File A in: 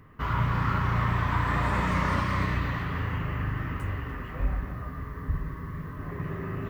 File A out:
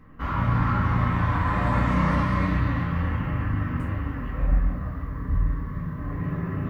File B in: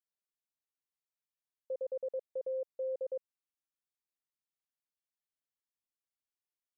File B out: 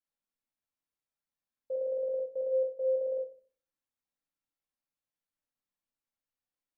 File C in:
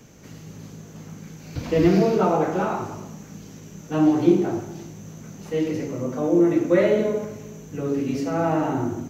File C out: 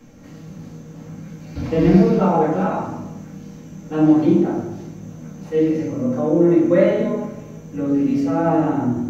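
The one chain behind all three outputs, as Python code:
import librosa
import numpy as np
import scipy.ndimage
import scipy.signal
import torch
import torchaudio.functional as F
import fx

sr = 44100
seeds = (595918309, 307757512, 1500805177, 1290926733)

y = fx.high_shelf(x, sr, hz=3000.0, db=-7.5)
y = fx.room_shoebox(y, sr, seeds[0], volume_m3=280.0, walls='furnished', distance_m=2.2)
y = F.gain(torch.from_numpy(y), -1.0).numpy()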